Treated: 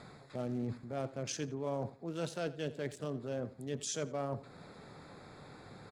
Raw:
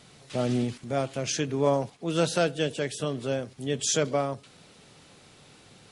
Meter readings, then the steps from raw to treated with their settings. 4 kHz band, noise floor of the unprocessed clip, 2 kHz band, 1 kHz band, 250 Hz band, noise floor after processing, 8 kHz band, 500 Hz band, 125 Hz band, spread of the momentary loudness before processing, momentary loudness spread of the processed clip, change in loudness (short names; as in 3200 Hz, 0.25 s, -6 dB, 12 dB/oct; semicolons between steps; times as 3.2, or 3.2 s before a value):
-13.5 dB, -55 dBFS, -12.5 dB, -11.5 dB, -10.0 dB, -55 dBFS, -12.0 dB, -11.5 dB, -9.0 dB, 7 LU, 15 LU, -11.0 dB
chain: Wiener smoothing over 15 samples; reverse; compressor 4:1, threshold -39 dBFS, peak gain reduction 17 dB; reverse; feedback echo 85 ms, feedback 28%, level -18 dB; mismatched tape noise reduction encoder only; gain +2 dB